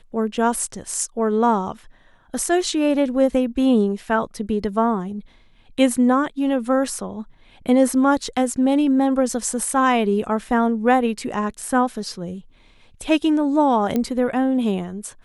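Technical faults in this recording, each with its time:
13.96 s: pop -10 dBFS

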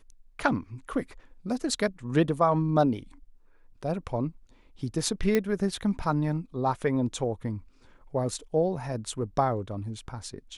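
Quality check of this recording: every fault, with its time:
5.35 s: pop -11 dBFS

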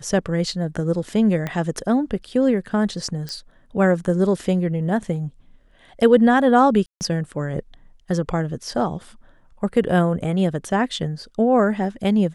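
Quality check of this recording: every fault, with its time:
1.47 s: pop -13 dBFS
3.29 s: pop -17 dBFS
6.86–7.01 s: dropout 149 ms

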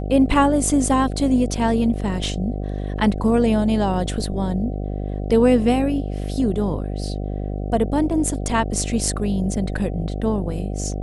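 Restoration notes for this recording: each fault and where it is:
buzz 50 Hz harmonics 15 -26 dBFS

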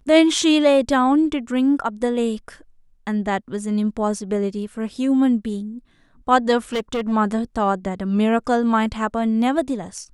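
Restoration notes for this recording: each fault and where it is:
6.73–7.13 s: clipped -19 dBFS

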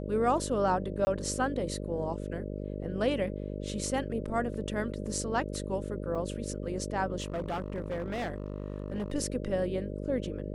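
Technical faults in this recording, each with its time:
buzz 50 Hz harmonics 12 -37 dBFS
1.05–1.07 s: dropout 20 ms
6.15 s: dropout 4.6 ms
7.20–9.12 s: clipped -29.5 dBFS

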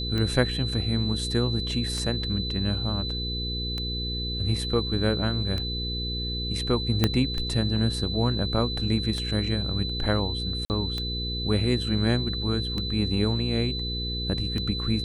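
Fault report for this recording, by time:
hum 60 Hz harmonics 8 -32 dBFS
tick 33 1/3 rpm -17 dBFS
whine 4 kHz -31 dBFS
7.04 s: pop -6 dBFS
10.65–10.70 s: dropout 49 ms

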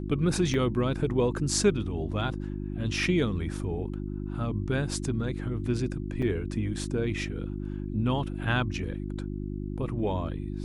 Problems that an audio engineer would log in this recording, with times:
hum 50 Hz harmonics 7 -34 dBFS
0.54 s: dropout 2.3 ms
6.22–6.23 s: dropout 5.4 ms

